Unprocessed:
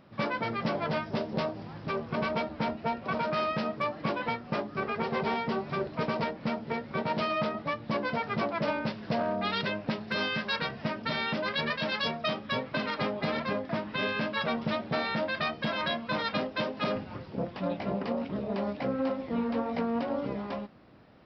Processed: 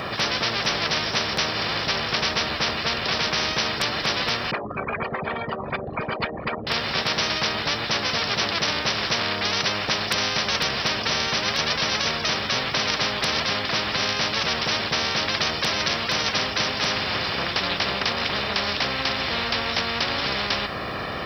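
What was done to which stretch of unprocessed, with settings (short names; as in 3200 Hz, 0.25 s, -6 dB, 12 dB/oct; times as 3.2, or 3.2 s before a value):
4.51–6.67 formant sharpening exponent 3
whole clip: HPF 69 Hz; comb 1.7 ms, depth 64%; spectral compressor 10:1; gain +7.5 dB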